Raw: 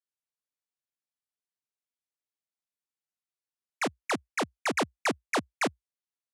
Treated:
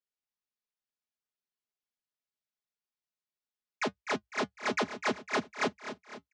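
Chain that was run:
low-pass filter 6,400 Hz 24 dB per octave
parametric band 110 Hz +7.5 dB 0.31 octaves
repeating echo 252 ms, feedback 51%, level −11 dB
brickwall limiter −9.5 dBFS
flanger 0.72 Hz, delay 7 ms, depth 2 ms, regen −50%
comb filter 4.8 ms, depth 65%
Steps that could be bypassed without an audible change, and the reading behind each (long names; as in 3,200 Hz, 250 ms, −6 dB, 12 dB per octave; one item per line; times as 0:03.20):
brickwall limiter −9.5 dBFS: peak of its input −16.5 dBFS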